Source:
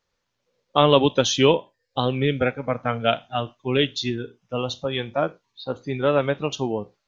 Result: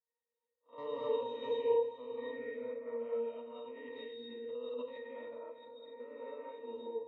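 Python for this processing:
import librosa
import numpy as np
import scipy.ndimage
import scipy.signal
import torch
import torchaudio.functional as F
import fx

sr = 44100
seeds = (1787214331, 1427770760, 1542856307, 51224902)

y = fx.spec_blur(x, sr, span_ms=119.0)
y = scipy.signal.sosfilt(scipy.signal.butter(6, 320.0, 'highpass', fs=sr, output='sos'), y)
y = fx.high_shelf_res(y, sr, hz=3600.0, db=-7.0, q=3.0)
y = fx.notch(y, sr, hz=750.0, q=17.0)
y = fx.level_steps(y, sr, step_db=10)
y = np.clip(y, -10.0 ** (-13.0 / 20.0), 10.0 ** (-13.0 / 20.0))
y = fx.octave_resonator(y, sr, note='A#', decay_s=0.46)
y = y + 10.0 ** (-13.5 / 20.0) * np.pad(y, (int(400 * sr / 1000.0), 0))[:len(y)]
y = fx.rev_gated(y, sr, seeds[0], gate_ms=280, shape='rising', drr_db=-5.0)
y = fx.pre_swell(y, sr, db_per_s=27.0, at=(3.35, 5.87))
y = y * 10.0 ** (4.0 / 20.0)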